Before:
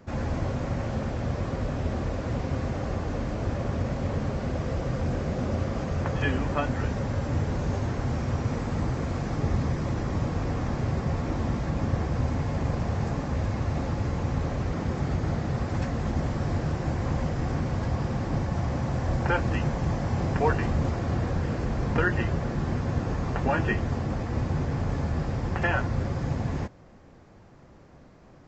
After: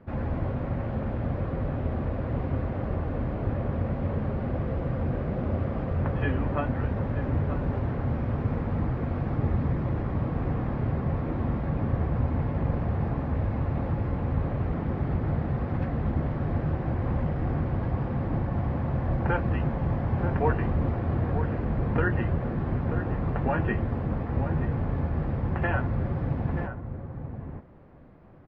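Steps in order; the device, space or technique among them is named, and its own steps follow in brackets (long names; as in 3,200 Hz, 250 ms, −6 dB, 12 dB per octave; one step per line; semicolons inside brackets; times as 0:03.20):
shout across a valley (high-frequency loss of the air 470 metres; slap from a distant wall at 160 metres, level −8 dB)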